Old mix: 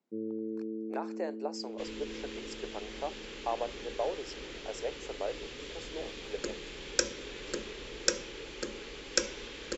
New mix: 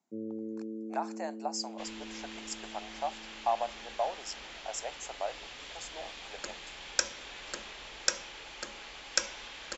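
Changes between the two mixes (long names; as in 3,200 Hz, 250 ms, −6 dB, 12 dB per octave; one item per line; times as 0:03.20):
speech: add low-pass with resonance 7,100 Hz, resonance Q 4.1
first sound +9.5 dB
master: add low shelf with overshoot 560 Hz −8 dB, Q 3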